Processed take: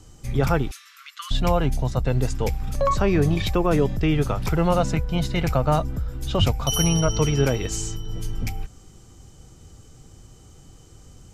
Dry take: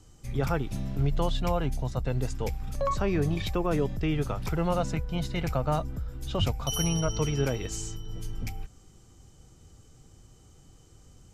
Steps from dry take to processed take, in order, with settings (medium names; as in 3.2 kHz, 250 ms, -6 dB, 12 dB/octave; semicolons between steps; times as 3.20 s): 0.71–1.31 s: Chebyshev high-pass 1.1 kHz, order 8; trim +7 dB